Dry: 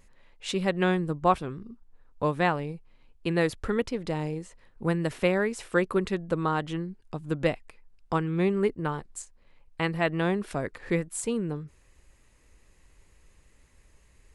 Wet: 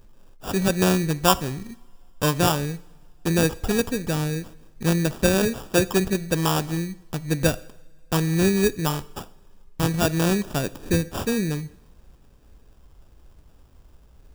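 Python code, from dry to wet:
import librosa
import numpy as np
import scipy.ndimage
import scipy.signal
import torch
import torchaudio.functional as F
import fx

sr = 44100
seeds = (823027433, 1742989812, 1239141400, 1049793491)

y = fx.sample_hold(x, sr, seeds[0], rate_hz=2100.0, jitter_pct=0)
y = fx.bass_treble(y, sr, bass_db=5, treble_db=5)
y = fx.rev_double_slope(y, sr, seeds[1], early_s=0.71, late_s=2.8, knee_db=-21, drr_db=16.0)
y = F.gain(torch.from_numpy(y), 3.0).numpy()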